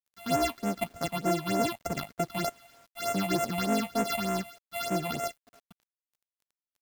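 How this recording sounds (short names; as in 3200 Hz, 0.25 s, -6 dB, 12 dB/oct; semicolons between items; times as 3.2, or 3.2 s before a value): a buzz of ramps at a fixed pitch in blocks of 64 samples; phasing stages 6, 3.3 Hz, lowest notch 380–4400 Hz; a quantiser's noise floor 10-bit, dither none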